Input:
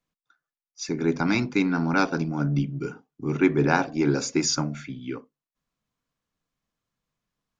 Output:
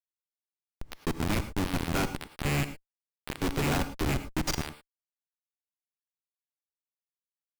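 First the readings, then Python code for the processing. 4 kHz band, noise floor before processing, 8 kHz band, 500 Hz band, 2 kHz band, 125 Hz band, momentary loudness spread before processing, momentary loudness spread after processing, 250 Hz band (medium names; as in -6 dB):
-4.0 dB, under -85 dBFS, no reading, -9.0 dB, -7.0 dB, -5.0 dB, 13 LU, 12 LU, -9.5 dB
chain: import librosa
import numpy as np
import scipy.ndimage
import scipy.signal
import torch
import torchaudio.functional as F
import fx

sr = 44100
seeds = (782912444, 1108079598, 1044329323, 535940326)

y = fx.rattle_buzz(x, sr, strikes_db=-26.0, level_db=-13.0)
y = fx.dynamic_eq(y, sr, hz=330.0, q=2.7, threshold_db=-35.0, ratio=4.0, max_db=-5)
y = fx.cheby_harmonics(y, sr, harmonics=(3, 5, 6, 8), levels_db=(-42, -37, -38, -18), full_scale_db=-5.5)
y = fx.schmitt(y, sr, flips_db=-23.5)
y = fx.rev_gated(y, sr, seeds[0], gate_ms=130, shape='rising', drr_db=11.5)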